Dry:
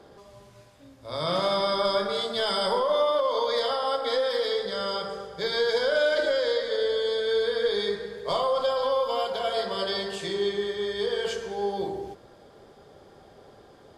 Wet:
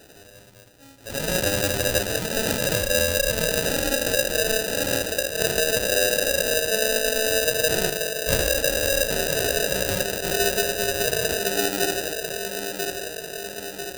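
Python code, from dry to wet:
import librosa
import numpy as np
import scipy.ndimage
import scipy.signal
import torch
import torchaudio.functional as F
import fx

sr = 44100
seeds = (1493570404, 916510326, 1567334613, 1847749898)

p1 = fx.ripple_eq(x, sr, per_octave=1.1, db=14, at=(7.7, 8.4))
p2 = fx.echo_wet_lowpass(p1, sr, ms=996, feedback_pct=60, hz=640.0, wet_db=-5)
p3 = fx.rider(p2, sr, range_db=3, speed_s=0.5)
p4 = p2 + F.gain(torch.from_numpy(p3), 2.5).numpy()
p5 = fx.sample_hold(p4, sr, seeds[0], rate_hz=1100.0, jitter_pct=0)
p6 = fx.high_shelf(p5, sr, hz=2500.0, db=11.5)
y = F.gain(torch.from_numpy(p6), -7.5).numpy()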